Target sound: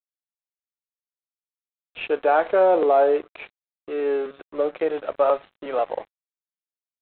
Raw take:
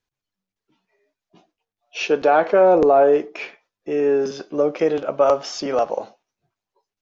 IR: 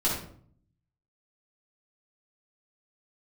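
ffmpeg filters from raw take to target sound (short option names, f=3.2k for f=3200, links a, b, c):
-af "highpass=370,lowpass=3.1k,aresample=8000,aeval=exprs='sgn(val(0))*max(abs(val(0))-0.0133,0)':c=same,aresample=44100,volume=-2dB"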